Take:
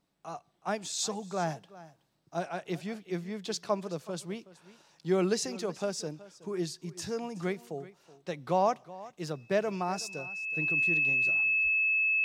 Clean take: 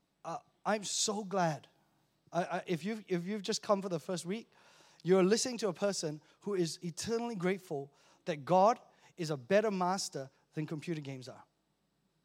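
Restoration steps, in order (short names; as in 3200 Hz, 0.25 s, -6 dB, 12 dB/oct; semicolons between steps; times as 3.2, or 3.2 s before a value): notch 2600 Hz, Q 30; 11.63–11.75 HPF 140 Hz 24 dB/oct; inverse comb 0.373 s -18.5 dB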